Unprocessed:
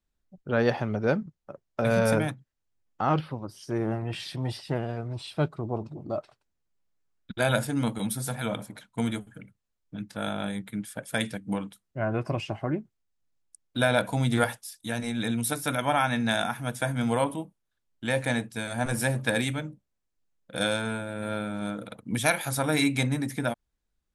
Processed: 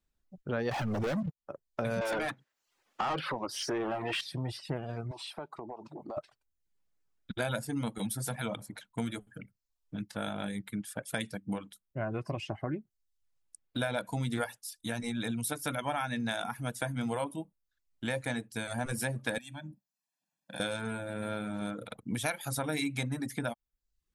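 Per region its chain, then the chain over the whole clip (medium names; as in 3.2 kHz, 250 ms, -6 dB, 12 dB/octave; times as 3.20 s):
0.71–1.38 s: compression 3:1, threshold -32 dBFS + waveshaping leveller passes 5
2.01–4.21 s: bass shelf 210 Hz -10 dB + compression 1.5:1, threshold -47 dBFS + overdrive pedal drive 29 dB, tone 2.7 kHz, clips at -15.5 dBFS
5.11–6.17 s: high-pass 280 Hz + peaking EQ 890 Hz +9 dB 0.68 oct + compression 8:1, threshold -37 dBFS
19.38–20.60 s: high-pass 160 Hz 24 dB/octave + comb 1.2 ms, depth 97% + compression 5:1, threshold -38 dBFS
whole clip: reverb removal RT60 0.51 s; compression 2.5:1, threshold -33 dBFS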